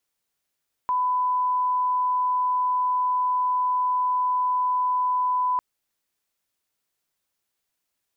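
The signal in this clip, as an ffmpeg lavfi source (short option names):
-f lavfi -i "sine=f=1000:d=4.7:r=44100,volume=-1.94dB"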